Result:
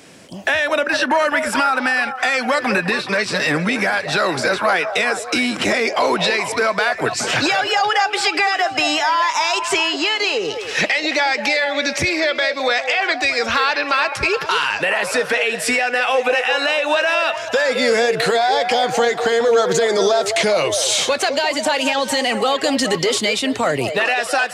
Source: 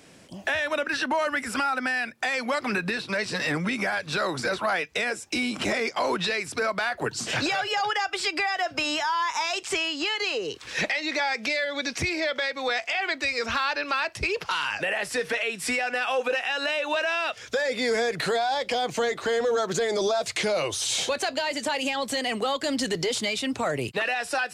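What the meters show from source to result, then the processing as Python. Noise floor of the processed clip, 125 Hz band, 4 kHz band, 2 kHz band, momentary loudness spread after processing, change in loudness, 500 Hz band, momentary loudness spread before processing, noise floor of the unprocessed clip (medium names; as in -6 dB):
-29 dBFS, +6.5 dB, +8.5 dB, +9.0 dB, 3 LU, +9.0 dB, +9.5 dB, 3 LU, -46 dBFS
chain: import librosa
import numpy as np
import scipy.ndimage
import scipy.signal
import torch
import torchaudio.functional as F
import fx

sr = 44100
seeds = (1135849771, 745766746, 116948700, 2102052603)

y = fx.low_shelf(x, sr, hz=75.0, db=-9.5)
y = fx.echo_stepped(y, sr, ms=210, hz=580.0, octaves=0.7, feedback_pct=70, wet_db=-5.5)
y = y * librosa.db_to_amplitude(8.5)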